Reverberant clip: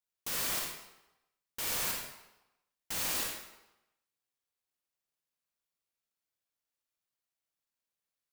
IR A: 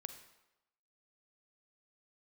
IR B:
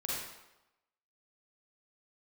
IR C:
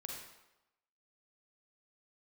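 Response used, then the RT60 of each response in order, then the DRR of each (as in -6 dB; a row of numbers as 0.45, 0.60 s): C; 0.95, 0.95, 0.95 s; 8.0, -6.0, -1.0 dB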